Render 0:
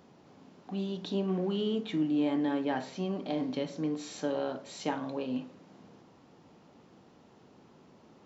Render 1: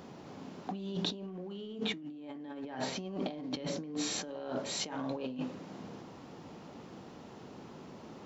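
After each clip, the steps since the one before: negative-ratio compressor -41 dBFS, ratio -1; gain +1.5 dB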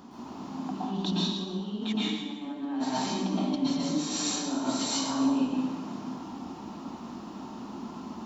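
graphic EQ 125/250/500/1000/2000 Hz -11/+10/-12/+7/-7 dB; plate-style reverb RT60 1.2 s, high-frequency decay 0.95×, pre-delay 0.105 s, DRR -7.5 dB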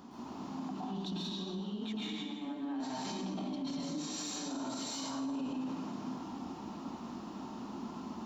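in parallel at -10.5 dB: hard clip -27 dBFS, distortion -11 dB; on the sum: limiter -26 dBFS, peak gain reduction 10 dB; gain -5.5 dB

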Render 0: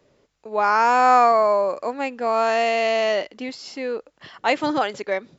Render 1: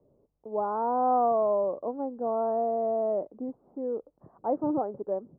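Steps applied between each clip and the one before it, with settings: Bessel low-pass 560 Hz, order 8; gain -2.5 dB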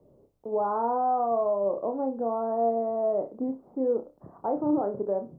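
limiter -25.5 dBFS, peak gain reduction 10 dB; on a send: flutter echo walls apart 5.2 m, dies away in 0.24 s; on the sum: gain +5.5 dB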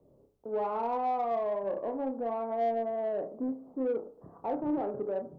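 reverb, pre-delay 3 ms, DRR 8.5 dB; in parallel at -4 dB: soft clip -27.5 dBFS, distortion -10 dB; on the sum: gain -8 dB

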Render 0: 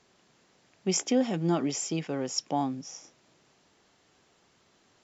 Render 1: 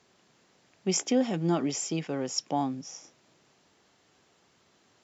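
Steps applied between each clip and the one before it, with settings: HPF 54 Hz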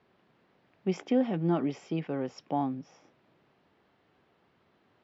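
air absorption 370 m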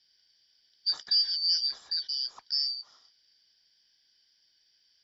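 four-band scrambler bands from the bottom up 4321

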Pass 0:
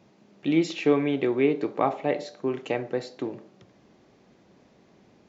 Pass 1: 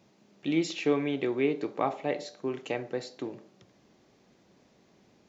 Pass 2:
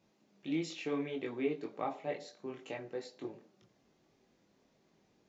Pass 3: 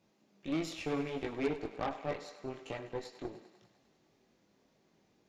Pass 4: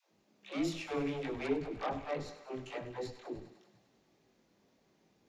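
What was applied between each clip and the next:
high shelf 3900 Hz +8 dB; gain -5 dB
chorus voices 6, 0.64 Hz, delay 22 ms, depth 4 ms; gain -5.5 dB
added harmonics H 8 -19 dB, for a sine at -21 dBFS; thinning echo 0.1 s, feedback 73%, high-pass 410 Hz, level -13 dB
dispersion lows, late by 0.138 s, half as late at 330 Hz

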